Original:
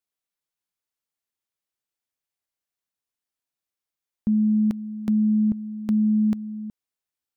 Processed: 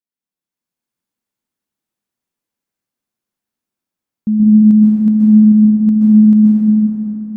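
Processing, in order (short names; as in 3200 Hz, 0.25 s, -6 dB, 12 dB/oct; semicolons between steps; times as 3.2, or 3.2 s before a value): bell 220 Hz +11.5 dB 1.5 oct; AGC gain up to 7 dB; plate-style reverb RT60 3.8 s, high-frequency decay 0.45×, pre-delay 0.115 s, DRR -6.5 dB; gain -8.5 dB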